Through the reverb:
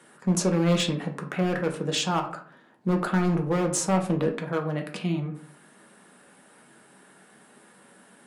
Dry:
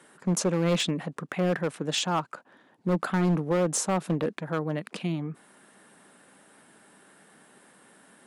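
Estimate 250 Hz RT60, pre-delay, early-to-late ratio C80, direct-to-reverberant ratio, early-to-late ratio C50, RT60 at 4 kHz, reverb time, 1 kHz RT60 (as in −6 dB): 0.60 s, 3 ms, 14.5 dB, 3.0 dB, 10.5 dB, 0.30 s, 0.50 s, 0.45 s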